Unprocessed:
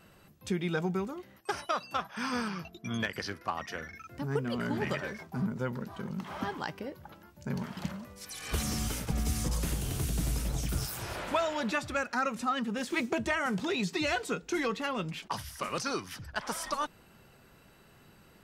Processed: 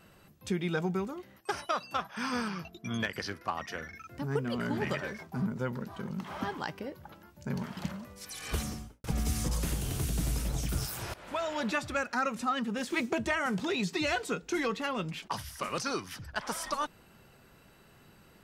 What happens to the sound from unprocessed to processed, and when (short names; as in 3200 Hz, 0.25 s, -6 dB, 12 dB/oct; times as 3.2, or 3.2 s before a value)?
8.47–9.04 studio fade out
11.14–11.6 fade in, from -18.5 dB